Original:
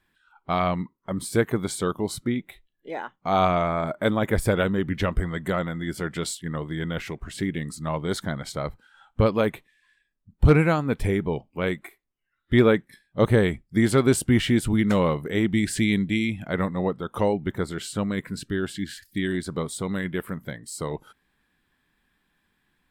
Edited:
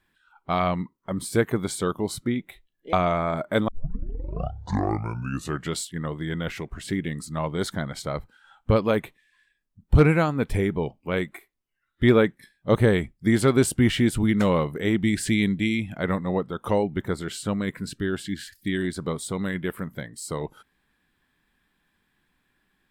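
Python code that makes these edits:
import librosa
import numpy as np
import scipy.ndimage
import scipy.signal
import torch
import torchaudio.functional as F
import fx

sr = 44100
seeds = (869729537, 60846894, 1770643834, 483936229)

y = fx.edit(x, sr, fx.cut(start_s=2.93, length_s=0.5),
    fx.tape_start(start_s=4.18, length_s=2.09), tone=tone)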